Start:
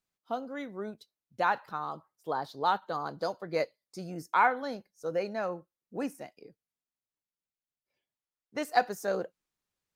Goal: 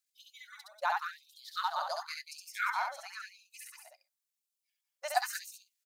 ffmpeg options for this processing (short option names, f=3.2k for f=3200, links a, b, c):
-af "bass=f=250:g=-5,treble=f=4k:g=9,atempo=1.7,aecho=1:1:67.06|189.5|253.6:0.794|0.501|0.282,afftfilt=real='re*gte(b*sr/1024,520*pow(2400/520,0.5+0.5*sin(2*PI*0.94*pts/sr)))':imag='im*gte(b*sr/1024,520*pow(2400/520,0.5+0.5*sin(2*PI*0.94*pts/sr)))':win_size=1024:overlap=0.75,volume=-3dB"